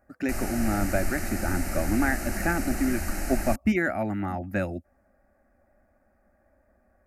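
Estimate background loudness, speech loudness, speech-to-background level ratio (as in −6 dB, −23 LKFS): −33.0 LKFS, −28.5 LKFS, 4.5 dB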